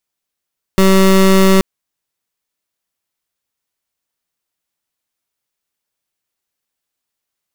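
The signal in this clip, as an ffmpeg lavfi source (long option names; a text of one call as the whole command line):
ffmpeg -f lavfi -i "aevalsrc='0.376*(2*lt(mod(191*t,1),0.24)-1)':duration=0.83:sample_rate=44100" out.wav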